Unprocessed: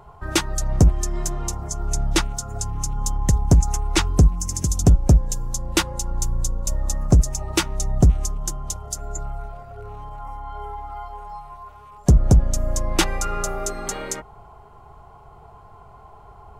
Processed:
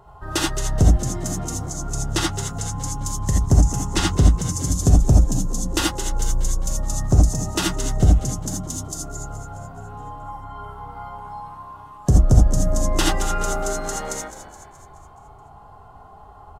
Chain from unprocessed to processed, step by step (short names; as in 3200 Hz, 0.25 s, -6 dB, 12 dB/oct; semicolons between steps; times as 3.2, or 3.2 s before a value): notch 2300 Hz, Q 5.9; frequency-shifting echo 0.212 s, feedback 54%, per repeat +64 Hz, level -13 dB; non-linear reverb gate 0.1 s rising, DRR -2 dB; gain -3.5 dB